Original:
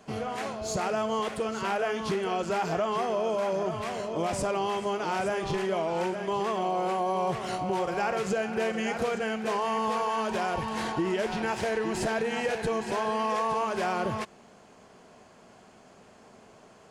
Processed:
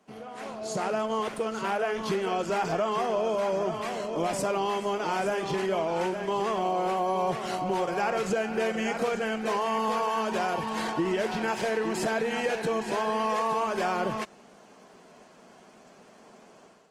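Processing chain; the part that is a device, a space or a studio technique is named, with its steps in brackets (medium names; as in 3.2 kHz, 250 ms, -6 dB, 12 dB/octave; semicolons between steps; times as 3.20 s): video call (high-pass 150 Hz 24 dB/octave; level rider gain up to 10 dB; trim -9 dB; Opus 20 kbps 48 kHz)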